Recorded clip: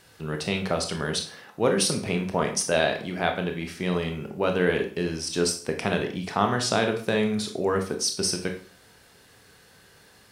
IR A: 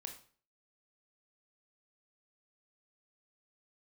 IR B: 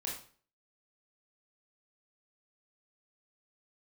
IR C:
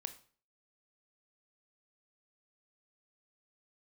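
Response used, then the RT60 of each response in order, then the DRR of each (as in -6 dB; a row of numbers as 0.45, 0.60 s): A; 0.45, 0.45, 0.45 s; 4.0, -3.5, 9.5 dB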